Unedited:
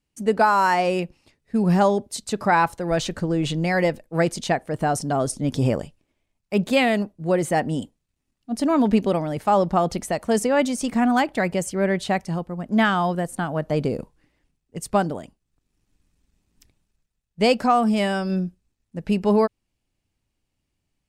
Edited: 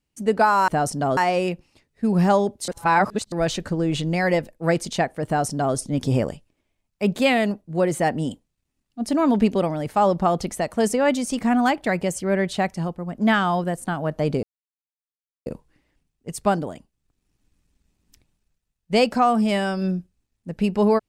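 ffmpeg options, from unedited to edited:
-filter_complex "[0:a]asplit=6[s0][s1][s2][s3][s4][s5];[s0]atrim=end=0.682[s6];[s1]atrim=start=4.768:end=5.262[s7];[s2]atrim=start=0.678:end=2.192[s8];[s3]atrim=start=2.188:end=2.832,asetpts=PTS-STARTPTS,areverse[s9];[s4]atrim=start=2.828:end=13.94,asetpts=PTS-STARTPTS,afade=t=out:st=11.108:d=0.004:c=hsin,apad=pad_dur=1.03[s10];[s5]atrim=start=13.94,asetpts=PTS-STARTPTS,afade=t=in:d=0.004:c=hsin[s11];[s6][s7]acrossfade=d=0.004:c1=hsin:c2=hsin[s12];[s12][s8]acrossfade=d=0.004:c1=hsin:c2=hsin[s13];[s13][s9]acrossfade=d=0.004:c1=hsin:c2=hsin[s14];[s10][s11]concat=n=2:v=0:a=1[s15];[s14][s15]acrossfade=d=0.004:c1=hsin:c2=hsin"

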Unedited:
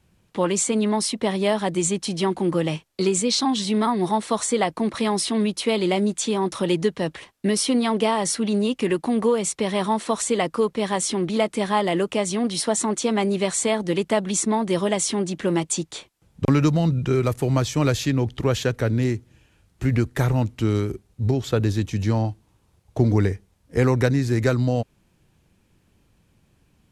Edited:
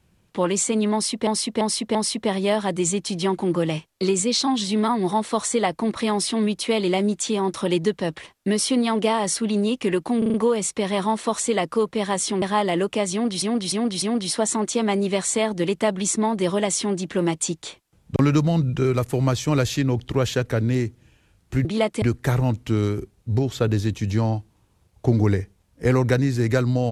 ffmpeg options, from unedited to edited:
-filter_complex "[0:a]asplit=14[s0][s1][s2][s3][s4][s5][s6][s7][s8][s9][s10][s11][s12][s13];[s0]atrim=end=1.272[s14];[s1]atrim=start=0.928:end=1.272[s15];[s2]atrim=start=0.928:end=1.272[s16];[s3]atrim=start=0.928:end=9.202[s17];[s4]atrim=start=9.158:end=9.202[s18];[s5]atrim=start=9.158:end=9.202[s19];[s6]atrim=start=9.158:end=9.202[s20];[s7]atrim=start=9.158:end=11.242[s21];[s8]atrim=start=11.608:end=12.612[s22];[s9]atrim=start=12.308:end=12.612[s23];[s10]atrim=start=12.308:end=12.612[s24];[s11]atrim=start=12.308:end=19.942[s25];[s12]atrim=start=11.238:end=11.612[s26];[s13]atrim=start=19.938[s27];[s14][s15]acrossfade=d=0.004:c1=hsin:c2=hsin[s28];[s28][s16]acrossfade=d=0.004:c1=hsin:c2=hsin[s29];[s29][s17]acrossfade=d=0.004:c1=hsin:c2=hsin[s30];[s30][s18]acrossfade=d=0.004:c1=hsin:c2=hsin[s31];[s31][s19]acrossfade=d=0.004:c1=hsin:c2=hsin[s32];[s32][s20]acrossfade=d=0.004:c1=hsin:c2=hsin[s33];[s33][s21]acrossfade=d=0.004:c1=hsin:c2=hsin[s34];[s34][s22]acrossfade=d=0.004:c1=hsin:c2=hsin[s35];[s35][s23]acrossfade=d=0.004:c1=hsin:c2=hsin[s36];[s36][s24]acrossfade=d=0.004:c1=hsin:c2=hsin[s37];[s37][s25]acrossfade=d=0.004:c1=hsin:c2=hsin[s38];[s38][s26]acrossfade=d=0.004:c1=hsin:c2=hsin[s39];[s39][s27]acrossfade=d=0.004:c1=hsin:c2=hsin"

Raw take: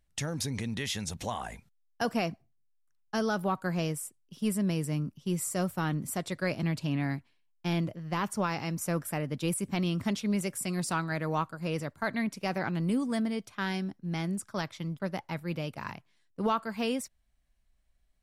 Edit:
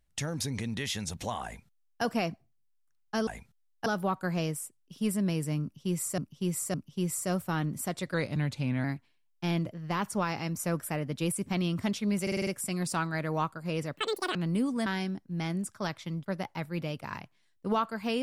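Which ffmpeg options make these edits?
-filter_complex "[0:a]asplit=15[s0][s1][s2][s3][s4][s5][s6][s7][s8][s9][s10][s11][s12][s13][s14];[s0]atrim=end=3.272[s15];[s1]atrim=start=1.438:end=2.032[s16];[s2]atrim=start=3.268:end=5.592[s17];[s3]atrim=start=5.028:end=5.592[s18];[s4]atrim=start=5.028:end=6.434[s19];[s5]atrim=start=6.43:end=7.06,asetpts=PTS-STARTPTS,asetrate=39690,aresample=44100[s20];[s6]atrim=start=7.056:end=10.492[s21];[s7]atrim=start=10.438:end=10.492[s22];[s8]atrim=start=10.438:end=10.492[s23];[s9]atrim=start=10.438:end=10.492[s24];[s10]atrim=start=10.438:end=10.492[s25];[s11]atrim=start=10.438:end=11.934[s26];[s12]atrim=start=11.93:end=12.69,asetpts=PTS-STARTPTS,asetrate=85554,aresample=44100,atrim=end_sample=17276,asetpts=PTS-STARTPTS[s27];[s13]atrim=start=12.686:end=13.202[s28];[s14]atrim=start=13.598[s29];[s15][s16]acrossfade=d=0.004:c1=hsin:c2=hsin[s30];[s30][s17]acrossfade=d=0.004:c1=hsin:c2=hsin[s31];[s31][s18]acrossfade=d=0.004:c1=hsin:c2=hsin[s32];[s32][s19]acrossfade=d=0.004:c1=hsin:c2=hsin[s33];[s33][s20]acrossfade=d=0.004:c1=hsin:c2=hsin[s34];[s34][s21]acrossfade=d=0.004:c1=hsin:c2=hsin[s35];[s35][s22]acrossfade=d=0.004:c1=hsin:c2=hsin[s36];[s36][s23]acrossfade=d=0.004:c1=hsin:c2=hsin[s37];[s37][s24]acrossfade=d=0.004:c1=hsin:c2=hsin[s38];[s38][s25]acrossfade=d=0.004:c1=hsin:c2=hsin[s39];[s39][s26]acrossfade=d=0.004:c1=hsin:c2=hsin[s40];[s40][s27]acrossfade=d=0.004:c1=hsin:c2=hsin[s41];[s41][s28]acrossfade=d=0.004:c1=hsin:c2=hsin[s42];[s42][s29]acrossfade=d=0.004:c1=hsin:c2=hsin"

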